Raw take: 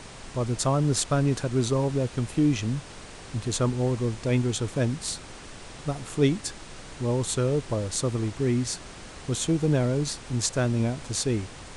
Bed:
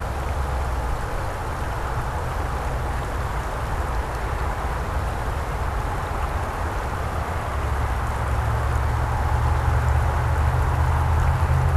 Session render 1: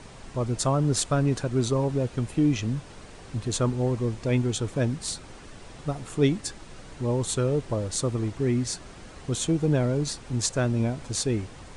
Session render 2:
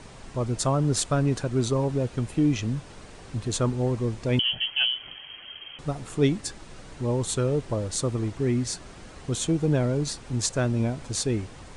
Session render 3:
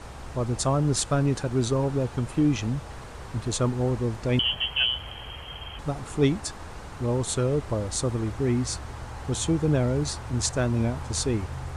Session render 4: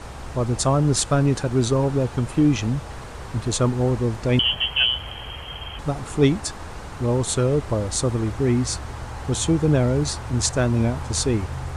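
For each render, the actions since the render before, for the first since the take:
broadband denoise 6 dB, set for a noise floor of −44 dBFS
0:04.39–0:05.79: voice inversion scrambler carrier 3,200 Hz
mix in bed −16 dB
level +4.5 dB

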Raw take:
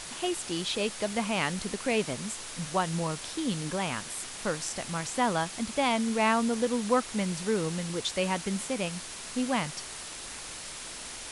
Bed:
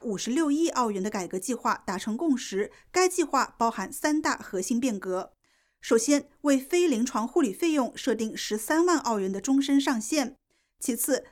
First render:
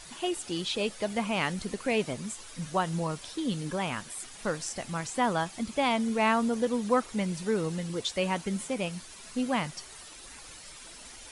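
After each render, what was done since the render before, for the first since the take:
broadband denoise 10 dB, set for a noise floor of −41 dBFS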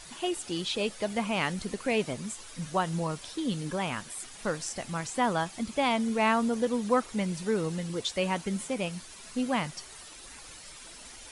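no processing that can be heard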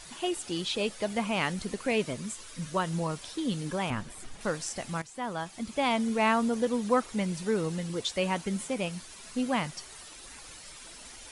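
0:01.91–0:02.91: notch filter 780 Hz, Q 5
0:03.90–0:04.41: spectral tilt −2.5 dB per octave
0:05.02–0:05.94: fade in, from −14 dB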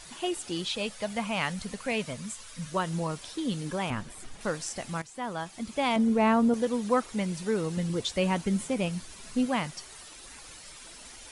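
0:00.69–0:02.72: parametric band 350 Hz −12.5 dB 0.5 octaves
0:05.96–0:06.54: tilt shelving filter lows +6 dB
0:07.77–0:09.46: low-shelf EQ 260 Hz +7.5 dB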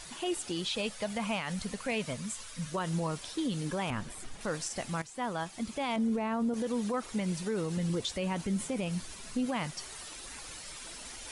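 brickwall limiter −24 dBFS, peak gain reduction 11.5 dB
reversed playback
upward compression, threshold −39 dBFS
reversed playback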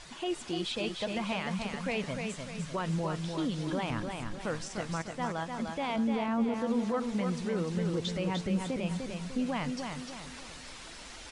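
high-frequency loss of the air 77 metres
repeating echo 300 ms, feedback 43%, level −5 dB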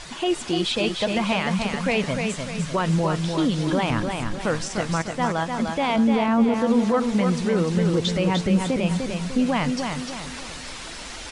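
level +10.5 dB

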